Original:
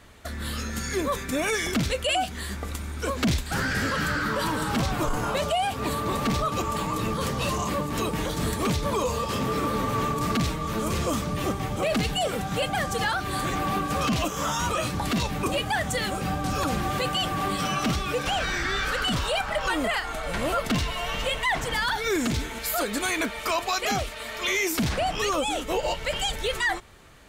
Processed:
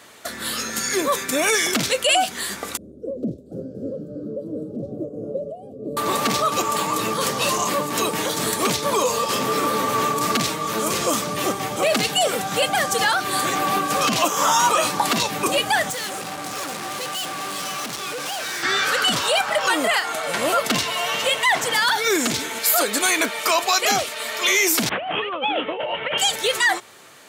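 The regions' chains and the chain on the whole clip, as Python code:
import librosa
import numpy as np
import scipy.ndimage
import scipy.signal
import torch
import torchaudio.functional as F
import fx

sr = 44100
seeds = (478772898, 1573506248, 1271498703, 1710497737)

y = fx.chain(x, sr, fx.ellip_lowpass(hz=560.0, order=4, stop_db=40),
    fx.tremolo_shape(shape='triangle', hz=2.9, depth_pct=40), at=(2.77, 5.97))
y = fx.chain(y, sr, fx.highpass(hz=120.0, slope=12),
    fx.peak_eq(hz=940.0, db=6.5, octaves=0.62), at=(14.18, 15.17))
y = fx.chain(y, sr, fx.cvsd(bps=64000),
    fx.highpass(hz=48.0, slope=12),
    fx.overload_stage(gain_db=34.0), at=(15.9, 18.63))
y = fx.chain(y, sr, fx.steep_lowpass(hz=3300.0, slope=72),
    fx.over_compress(threshold_db=-29.0, ratio=-0.5), at=(24.89, 26.18))
y = scipy.signal.sosfilt(scipy.signal.butter(4, 110.0, 'highpass', fs=sr, output='sos'), y)
y = fx.bass_treble(y, sr, bass_db=-11, treble_db=5)
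y = F.gain(torch.from_numpy(y), 6.5).numpy()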